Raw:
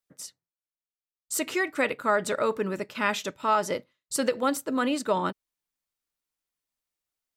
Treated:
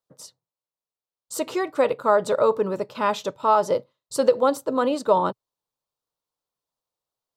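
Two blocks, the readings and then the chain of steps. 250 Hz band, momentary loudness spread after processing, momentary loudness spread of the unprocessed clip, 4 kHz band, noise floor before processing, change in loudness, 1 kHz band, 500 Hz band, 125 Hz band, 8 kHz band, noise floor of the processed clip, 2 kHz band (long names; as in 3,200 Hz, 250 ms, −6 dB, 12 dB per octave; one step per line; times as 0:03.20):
+1.0 dB, 8 LU, 8 LU, −1.0 dB, below −85 dBFS, +5.0 dB, +5.5 dB, +7.5 dB, +2.0 dB, −3.5 dB, below −85 dBFS, −4.5 dB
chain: octave-band graphic EQ 125/500/1,000/2,000/4,000 Hz +11/+11/+11/−7/+6 dB
level −4.5 dB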